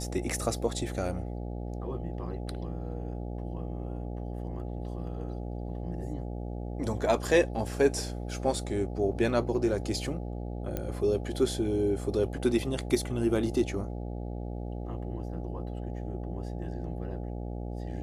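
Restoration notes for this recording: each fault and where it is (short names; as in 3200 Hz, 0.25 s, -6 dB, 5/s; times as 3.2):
buzz 60 Hz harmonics 14 -36 dBFS
10.77 pop -18 dBFS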